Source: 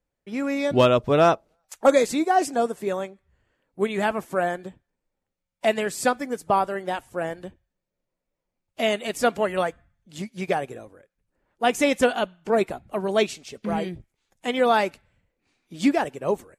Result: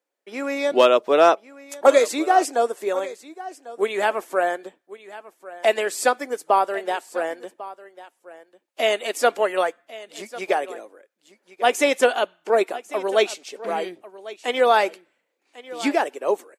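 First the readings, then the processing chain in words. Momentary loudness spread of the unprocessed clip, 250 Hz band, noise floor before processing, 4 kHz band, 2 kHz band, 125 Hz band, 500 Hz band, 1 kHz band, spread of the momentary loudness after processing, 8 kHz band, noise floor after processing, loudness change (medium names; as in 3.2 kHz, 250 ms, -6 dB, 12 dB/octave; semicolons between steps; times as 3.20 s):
14 LU, -4.0 dB, -83 dBFS, +3.0 dB, +3.0 dB, under -15 dB, +3.0 dB, +3.0 dB, 21 LU, +3.0 dB, -74 dBFS, +2.5 dB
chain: high-pass 330 Hz 24 dB/octave; on a send: delay 1097 ms -17.5 dB; on the sum: trim +3 dB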